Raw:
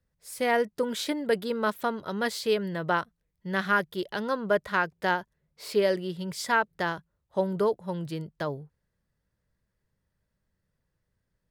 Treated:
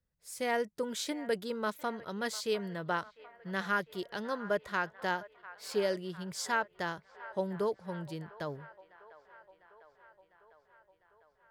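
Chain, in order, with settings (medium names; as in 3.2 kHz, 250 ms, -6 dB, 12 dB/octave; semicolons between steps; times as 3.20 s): dynamic bell 6.7 kHz, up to +7 dB, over -54 dBFS, Q 1.5; feedback echo behind a band-pass 701 ms, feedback 67%, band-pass 1.2 kHz, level -16 dB; trim -7 dB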